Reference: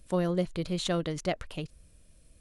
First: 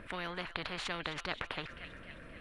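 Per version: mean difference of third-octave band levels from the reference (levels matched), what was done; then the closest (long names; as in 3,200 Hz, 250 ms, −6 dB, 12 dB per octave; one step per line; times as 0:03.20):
10.5 dB: drawn EQ curve 600 Hz 0 dB, 1,700 Hz +10 dB, 6,500 Hz −28 dB
on a send: delay with a high-pass on its return 262 ms, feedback 54%, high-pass 2,900 Hz, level −16.5 dB
on the sum: every bin compressed towards the loudest bin 4 to 1
level +1.5 dB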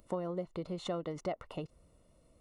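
4.5 dB: Savitzky-Golay smoothing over 65 samples
downward compressor 6 to 1, threshold −35 dBFS, peak gain reduction 11.5 dB
spectral tilt +3.5 dB per octave
level +6.5 dB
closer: second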